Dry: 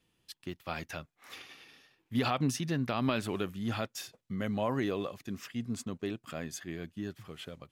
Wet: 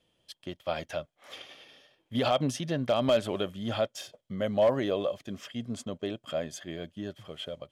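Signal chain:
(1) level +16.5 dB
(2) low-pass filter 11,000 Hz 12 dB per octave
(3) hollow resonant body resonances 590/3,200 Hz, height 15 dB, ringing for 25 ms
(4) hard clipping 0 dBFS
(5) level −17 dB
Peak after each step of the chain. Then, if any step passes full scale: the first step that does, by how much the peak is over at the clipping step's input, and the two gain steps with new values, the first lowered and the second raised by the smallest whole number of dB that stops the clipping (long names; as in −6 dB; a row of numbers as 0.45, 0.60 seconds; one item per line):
+0.5, +0.5, +5.0, 0.0, −17.0 dBFS
step 1, 5.0 dB
step 1 +11.5 dB, step 5 −12 dB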